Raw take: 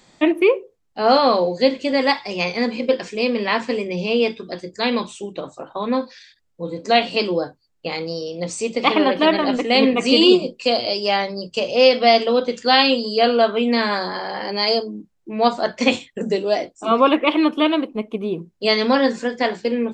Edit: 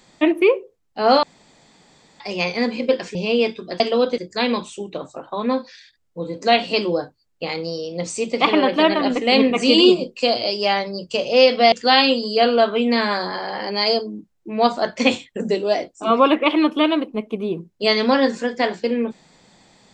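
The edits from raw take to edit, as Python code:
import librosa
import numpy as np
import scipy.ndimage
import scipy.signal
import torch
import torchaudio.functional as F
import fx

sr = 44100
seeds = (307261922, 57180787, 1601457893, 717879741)

y = fx.edit(x, sr, fx.room_tone_fill(start_s=1.23, length_s=0.97),
    fx.cut(start_s=3.15, length_s=0.81),
    fx.move(start_s=12.15, length_s=0.38, to_s=4.61), tone=tone)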